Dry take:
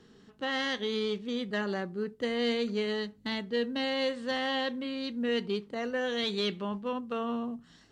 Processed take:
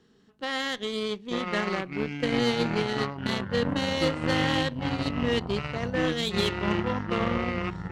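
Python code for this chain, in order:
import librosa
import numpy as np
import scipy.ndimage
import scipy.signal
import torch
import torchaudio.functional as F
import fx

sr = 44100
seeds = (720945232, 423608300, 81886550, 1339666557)

y = fx.echo_pitch(x, sr, ms=681, semitones=-7, count=3, db_per_echo=-3.0)
y = fx.cheby_harmonics(y, sr, harmonics=(7,), levels_db=(-21,), full_scale_db=-15.5)
y = y * 10.0 ** (4.0 / 20.0)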